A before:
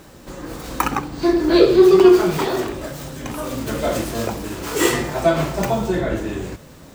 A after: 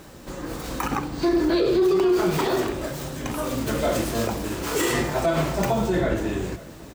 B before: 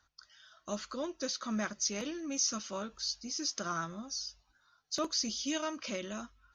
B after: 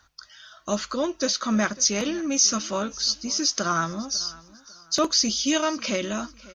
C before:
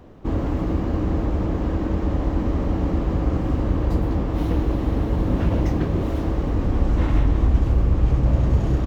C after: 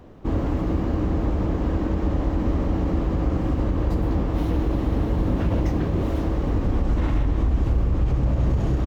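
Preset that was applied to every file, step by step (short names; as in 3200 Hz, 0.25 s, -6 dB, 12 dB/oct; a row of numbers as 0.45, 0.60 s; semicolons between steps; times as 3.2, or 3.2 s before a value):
limiter -13 dBFS; feedback echo 0.548 s, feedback 31%, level -21 dB; match loudness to -24 LUFS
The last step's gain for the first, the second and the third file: -0.5, +11.5, -0.5 dB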